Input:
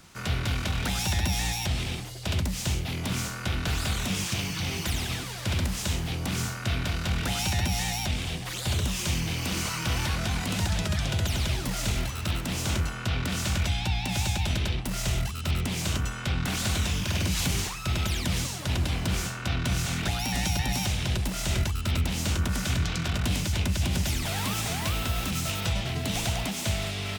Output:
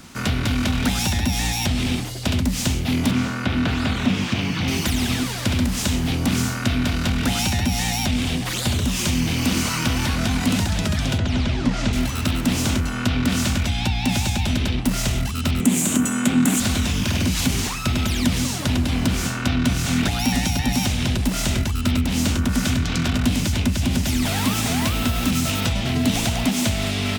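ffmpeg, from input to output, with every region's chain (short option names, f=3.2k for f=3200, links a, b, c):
-filter_complex "[0:a]asettb=1/sr,asplit=3[a][b][c];[a]atrim=end=3.114[d];[b]atrim=start=3.11:end=4.68,asetpts=PTS-STARTPTS,afade=t=in:d=0.004:c=qsin,afade=t=out:st=1.566:d=0.004:c=qsin,highpass=76,acrossover=split=4300[e][f];[f]acompressor=threshold=-48dB:ratio=4:attack=1:release=60[g];[e][g]amix=inputs=2:normalize=0,highshelf=f=6.1k:g=-6[h];[c]atrim=start=4.676[i];[d][h]acrossfade=d=0.004:c1=hsin:c2=qsin[j];[j][i]acrossfade=d=0.004:c1=qsin:c2=hsin,asettb=1/sr,asplit=3[k][l][m];[k]atrim=end=11.184[n];[l]atrim=start=11.18:end=11.93,asetpts=PTS-STARTPTS,afade=t=in:d=0.004:c=qsin,afade=t=out:st=0.746:d=0.004:c=qsin,lowpass=7.4k,aemphasis=mode=reproduction:type=50fm[o];[m]atrim=start=11.926[p];[n][o]acrossfade=d=0.004:c1=hsin:c2=qsin[q];[q][p]acrossfade=d=0.004:c1=qsin:c2=hsin,asettb=1/sr,asplit=3[r][s][t];[r]atrim=end=15.604[u];[s]atrim=start=15.6:end=16.6,asetpts=PTS-STARTPTS,afade=t=in:d=0.004:c=qsin,afade=t=out:st=0.996:d=0.004:c=qsin,highpass=f=210:t=q:w=1.9,highshelf=f=6.2k:t=q:w=3:g=6.5[v];[t]atrim=start=16.596[w];[u][v]acrossfade=d=0.004:c1=hsin:c2=qsin[x];[x][w]acrossfade=d=0.004:c1=qsin:c2=hsin,acompressor=threshold=-27dB:ratio=6,equalizer=f=250:t=o:w=0.33:g=13,volume=8.5dB"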